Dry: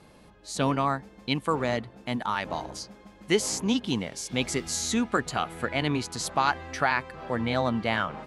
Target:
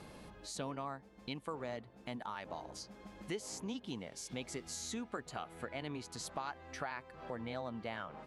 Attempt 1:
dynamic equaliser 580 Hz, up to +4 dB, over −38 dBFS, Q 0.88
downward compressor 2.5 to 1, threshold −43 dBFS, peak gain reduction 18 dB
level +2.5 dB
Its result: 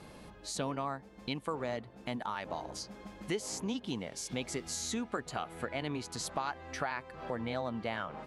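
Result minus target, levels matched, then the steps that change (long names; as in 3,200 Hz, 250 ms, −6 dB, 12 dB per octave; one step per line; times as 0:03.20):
downward compressor: peak gain reduction −5.5 dB
change: downward compressor 2.5 to 1, threshold −52.5 dBFS, peak gain reduction 23.5 dB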